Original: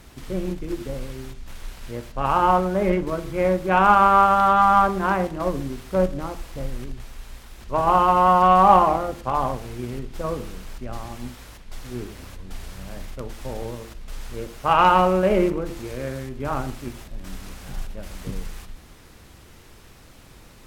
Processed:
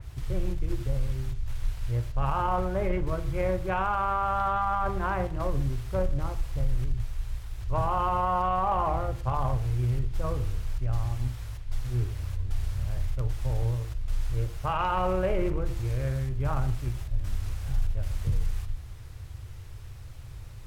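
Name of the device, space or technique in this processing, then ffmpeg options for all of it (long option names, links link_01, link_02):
car stereo with a boomy subwoofer: -af "lowshelf=frequency=150:width_type=q:width=3:gain=11.5,alimiter=limit=-12.5dB:level=0:latency=1:release=17,adynamicequalizer=threshold=0.0112:dfrequency=3400:dqfactor=0.7:tfrequency=3400:tqfactor=0.7:attack=5:release=100:ratio=0.375:range=2.5:mode=cutabove:tftype=highshelf,volume=-5.5dB"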